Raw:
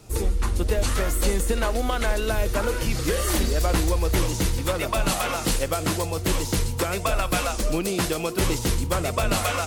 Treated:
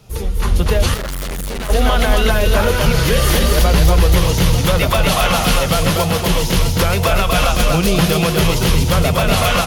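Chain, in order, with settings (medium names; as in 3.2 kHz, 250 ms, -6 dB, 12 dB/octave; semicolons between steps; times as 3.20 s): graphic EQ with 31 bands 160 Hz +9 dB, 315 Hz -10 dB, 3.15 kHz +5 dB, 8 kHz -10 dB; level rider; peak limiter -7.5 dBFS, peak gain reduction 5.5 dB; multi-tap echo 242/895 ms -3.5/-13 dB; 0.94–1.70 s: overload inside the chain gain 23.5 dB; trim +1.5 dB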